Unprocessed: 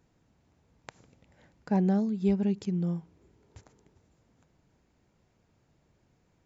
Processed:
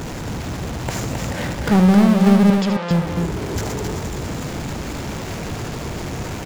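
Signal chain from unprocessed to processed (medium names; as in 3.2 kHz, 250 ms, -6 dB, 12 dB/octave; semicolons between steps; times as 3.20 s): power-law waveshaper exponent 0.35; 2.50–2.91 s: band-pass 520–3800 Hz; loudspeakers at several distances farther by 26 m -9 dB, 91 m -5 dB; trim +7 dB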